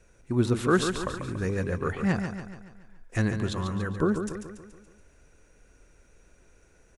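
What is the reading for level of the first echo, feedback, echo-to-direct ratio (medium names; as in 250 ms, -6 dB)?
-7.5 dB, 51%, -6.0 dB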